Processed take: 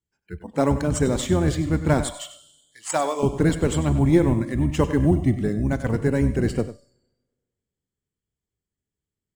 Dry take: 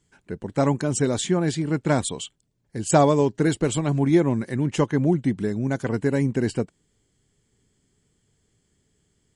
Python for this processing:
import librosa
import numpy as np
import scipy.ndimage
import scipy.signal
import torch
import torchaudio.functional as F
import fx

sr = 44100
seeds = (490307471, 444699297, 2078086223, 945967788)

p1 = fx.octave_divider(x, sr, octaves=1, level_db=-2.0)
p2 = fx.highpass(p1, sr, hz=1100.0, slope=6, at=(2.07, 3.23))
p3 = fx.rev_schroeder(p2, sr, rt60_s=1.7, comb_ms=32, drr_db=13.0)
p4 = fx.sample_hold(p3, sr, seeds[0], rate_hz=8800.0, jitter_pct=0)
p5 = p3 + (p4 * 10.0 ** (-10.5 / 20.0))
p6 = fx.noise_reduce_blind(p5, sr, reduce_db=22)
p7 = p6 + 10.0 ** (-14.0 / 20.0) * np.pad(p6, (int(96 * sr / 1000.0), 0))[:len(p6)]
y = p7 * 10.0 ** (-2.0 / 20.0)